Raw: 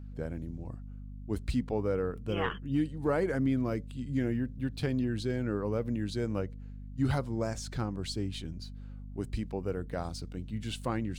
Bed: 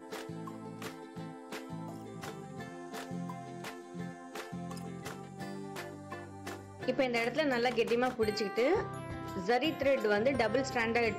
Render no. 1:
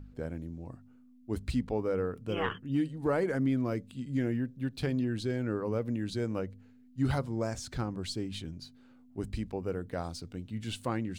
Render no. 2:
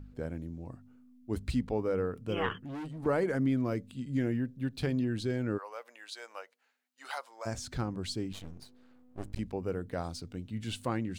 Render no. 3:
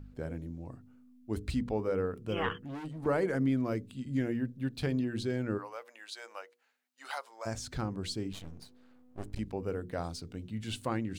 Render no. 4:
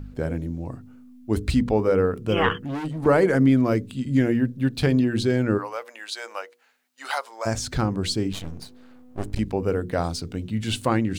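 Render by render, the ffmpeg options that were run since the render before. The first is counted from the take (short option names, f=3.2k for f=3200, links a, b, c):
-af "bandreject=f=50:t=h:w=4,bandreject=f=100:t=h:w=4,bandreject=f=150:t=h:w=4,bandreject=f=200:t=h:w=4"
-filter_complex "[0:a]asettb=1/sr,asplit=3[a][b][c];[a]atrim=end=2.574[d];[b]atrim=start=2.57:end=3.06,asetpts=PTS-STARTPTS,afade=t=in:d=0.004:c=qsin,afade=t=out:st=0.486:d=0.004:c=qsin,asoftclip=type=hard:threshold=-37.5dB[e];[c]atrim=start=3.056[f];[d][e]acrossfade=d=0.004:c1=hsin:c2=qsin[g];[g][f]acrossfade=d=0.004:c1=qsin:c2=hsin,asplit=3[h][i][j];[h]afade=t=out:st=5.57:d=0.02[k];[i]highpass=f=720:w=0.5412,highpass=f=720:w=1.3066,afade=t=in:st=5.57:d=0.02,afade=t=out:st=7.45:d=0.02[l];[j]afade=t=in:st=7.45:d=0.02[m];[k][l][m]amix=inputs=3:normalize=0,asettb=1/sr,asplit=3[n][o][p];[n]atrim=end=8.324[q];[o]atrim=start=8.32:end=9.39,asetpts=PTS-STARTPTS,afade=t=in:d=0.004:c=qsin,afade=t=out:st=1.066:d=0.004:c=qsin,aeval=exprs='max(val(0),0)':c=same[r];[p]atrim=start=9.386[s];[q][r]acrossfade=d=0.004:c1=hsin:c2=qsin[t];[t][s]acrossfade=d=0.004:c1=qsin:c2=hsin"
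-af "bandreject=f=60:t=h:w=6,bandreject=f=120:t=h:w=6,bandreject=f=180:t=h:w=6,bandreject=f=240:t=h:w=6,bandreject=f=300:t=h:w=6,bandreject=f=360:t=h:w=6,bandreject=f=420:t=h:w=6,bandreject=f=480:t=h:w=6"
-af "volume=11.5dB"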